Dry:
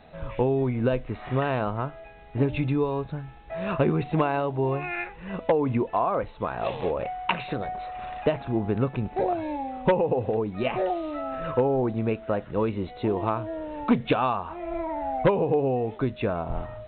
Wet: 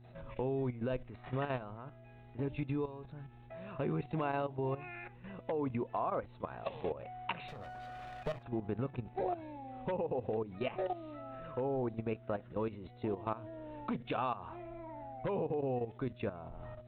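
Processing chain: 7.48–8.43 s: comb filter that takes the minimum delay 1.6 ms; level held to a coarse grid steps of 13 dB; mains buzz 120 Hz, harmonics 3, -49 dBFS -9 dB/octave; trim -8 dB

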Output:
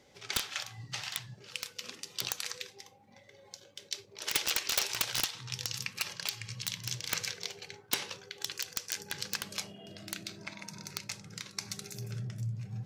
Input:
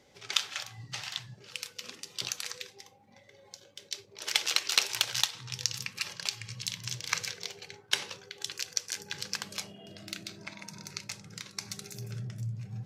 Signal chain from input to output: integer overflow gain 16.5 dB

